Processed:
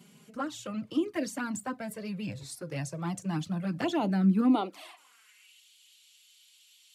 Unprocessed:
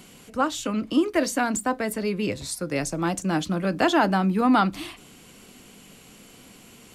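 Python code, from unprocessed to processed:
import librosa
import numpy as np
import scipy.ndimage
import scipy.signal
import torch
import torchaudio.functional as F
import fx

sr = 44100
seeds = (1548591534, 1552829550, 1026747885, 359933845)

y = fx.env_flanger(x, sr, rest_ms=5.3, full_db=-16.0)
y = fx.filter_sweep_highpass(y, sr, from_hz=130.0, to_hz=3500.0, start_s=4.12, end_s=5.62, q=2.9)
y = F.gain(torch.from_numpy(y), -8.0).numpy()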